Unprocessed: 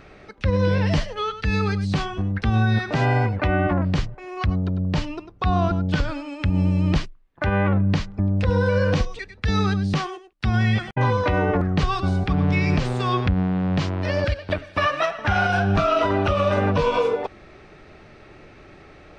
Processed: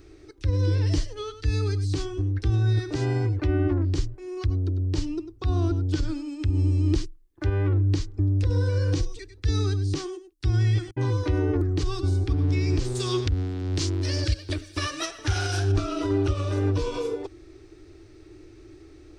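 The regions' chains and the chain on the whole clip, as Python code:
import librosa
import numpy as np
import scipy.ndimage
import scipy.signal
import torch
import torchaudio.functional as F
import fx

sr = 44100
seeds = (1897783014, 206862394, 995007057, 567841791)

y = fx.chain(x, sr, fx.high_shelf(hz=2900.0, db=12.0),
    fx.doppler_dist(depth_ms=0.19), at=(12.95, 15.72))
y = fx.curve_eq(y, sr, hz=(110.0, 200.0, 320.0, 570.0, 2700.0, 5100.0, 8700.0), db=(0, -25, 7, -16, -12, 0, 5))
y = fx.over_compress(y, sr, threshold_db=-20.0, ratio=-1.0)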